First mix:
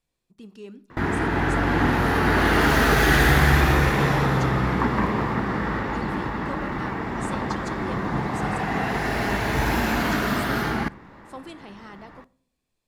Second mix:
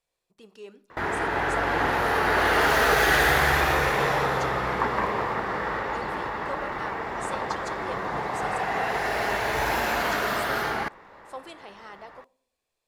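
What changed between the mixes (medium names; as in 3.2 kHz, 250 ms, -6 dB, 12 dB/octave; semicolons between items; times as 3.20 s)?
background: send off; master: add resonant low shelf 360 Hz -9.5 dB, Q 1.5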